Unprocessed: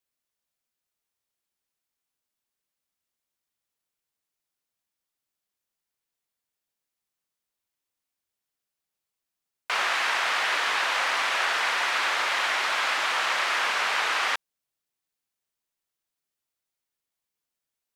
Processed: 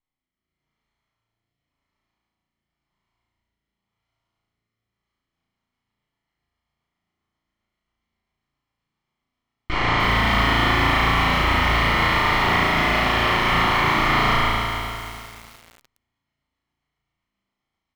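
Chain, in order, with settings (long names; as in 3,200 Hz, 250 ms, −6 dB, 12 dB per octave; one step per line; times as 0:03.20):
lower of the sound and its delayed copy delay 0.95 ms
in parallel at −8 dB: soft clipping −22.5 dBFS, distortion −16 dB
on the sum: convolution reverb, pre-delay 3 ms, DRR 10.5 dB
rotating-speaker cabinet horn 0.9 Hz, later 7.5 Hz, at 0:04.87
parametric band 630 Hz +3 dB 0.55 octaves
brickwall limiter −22 dBFS, peak gain reduction 9 dB
low-pass filter 2,600 Hz 12 dB per octave
low-shelf EQ 250 Hz +6.5 dB
flutter between parallel walls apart 6.1 metres, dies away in 1.4 s
automatic gain control gain up to 7 dB
feedback echo at a low word length 301 ms, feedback 55%, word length 6 bits, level −7 dB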